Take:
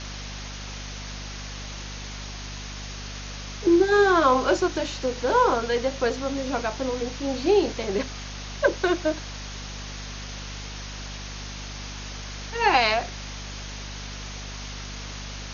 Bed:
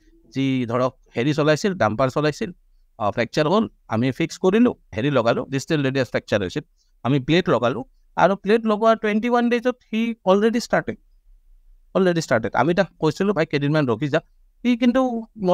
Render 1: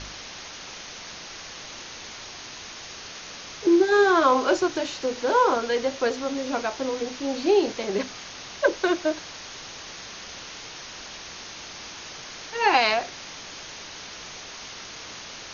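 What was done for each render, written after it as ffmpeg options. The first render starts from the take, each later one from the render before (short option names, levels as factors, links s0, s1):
-af "bandreject=f=50:t=h:w=4,bandreject=f=100:t=h:w=4,bandreject=f=150:t=h:w=4,bandreject=f=200:t=h:w=4,bandreject=f=250:t=h:w=4"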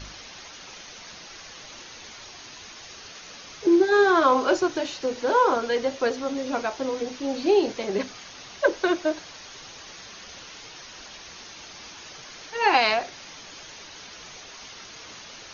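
-af "afftdn=nr=6:nf=-40"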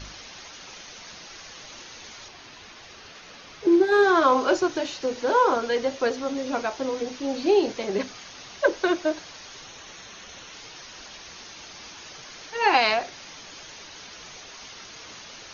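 -filter_complex "[0:a]asettb=1/sr,asplit=3[s0][s1][s2];[s0]atrim=end=2.284[s3];[s1]atrim=start=2.28:end=4.03,asetpts=PTS-STARTPTS,afade=t=in:d=0.004:c=qsin,afade=t=out:st=1.746:d=0.004:c=qsin,adynamicsmooth=sensitivity=2:basefreq=5200[s4];[s2]atrim=start=4.026[s5];[s3][s4]acrossfade=d=0.004:c1=hsin:c2=qsin[s6];[s6][s5]acrossfade=d=0.004:c1=qsin:c2=hsin,asettb=1/sr,asplit=3[s7][s8][s9];[s7]atrim=end=9.644[s10];[s8]atrim=start=9.64:end=10.53,asetpts=PTS-STARTPTS,afade=t=in:d=0.004:c=qsin,afade=t=out:st=0.886:d=0.004:c=qsin,bandreject=f=4800:w=6.8[s11];[s9]atrim=start=10.526[s12];[s10][s11]acrossfade=d=0.004:c1=hsin:c2=qsin[s13];[s13][s12]acrossfade=d=0.004:c1=qsin:c2=hsin"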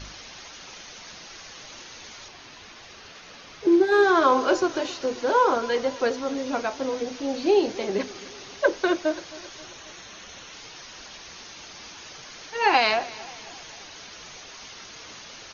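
-af "aecho=1:1:266|532|798|1064:0.106|0.0572|0.0309|0.0167"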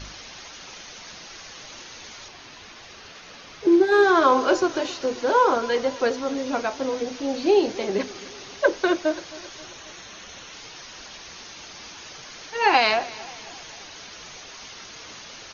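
-af "volume=1.19"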